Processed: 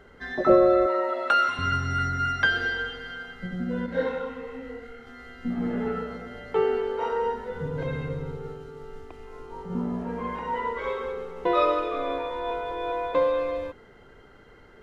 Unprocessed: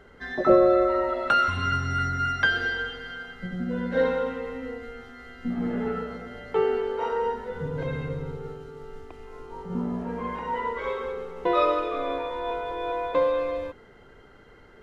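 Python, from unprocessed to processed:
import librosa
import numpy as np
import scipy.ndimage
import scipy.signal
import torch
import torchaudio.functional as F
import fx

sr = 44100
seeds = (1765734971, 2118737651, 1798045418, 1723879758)

y = fx.highpass(x, sr, hz=340.0, slope=12, at=(0.86, 1.59))
y = fx.detune_double(y, sr, cents=39, at=(3.86, 5.07))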